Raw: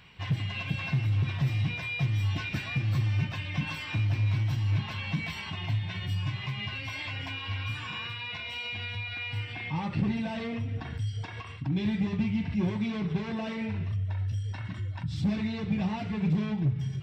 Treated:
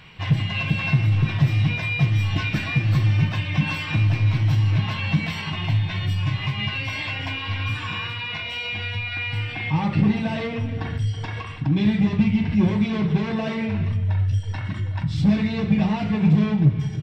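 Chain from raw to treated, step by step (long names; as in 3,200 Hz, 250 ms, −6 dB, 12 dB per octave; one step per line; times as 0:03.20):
high-shelf EQ 6,100 Hz −4.5 dB
slap from a distant wall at 56 metres, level −15 dB
convolution reverb RT60 0.40 s, pre-delay 6 ms, DRR 10 dB
level +8 dB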